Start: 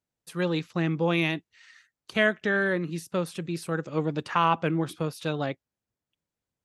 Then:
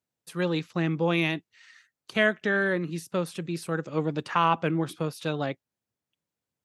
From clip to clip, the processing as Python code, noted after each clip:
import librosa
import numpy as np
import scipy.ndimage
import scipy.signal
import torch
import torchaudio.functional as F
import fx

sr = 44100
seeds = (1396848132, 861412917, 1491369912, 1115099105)

y = scipy.signal.sosfilt(scipy.signal.butter(2, 88.0, 'highpass', fs=sr, output='sos'), x)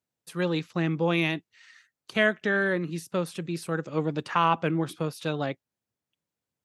y = x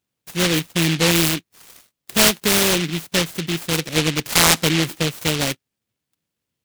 y = fx.noise_mod_delay(x, sr, seeds[0], noise_hz=2700.0, depth_ms=0.32)
y = y * librosa.db_to_amplitude(8.0)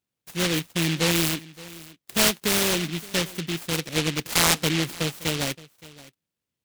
y = x + 10.0 ** (-20.0 / 20.0) * np.pad(x, (int(570 * sr / 1000.0), 0))[:len(x)]
y = y * librosa.db_to_amplitude(-5.5)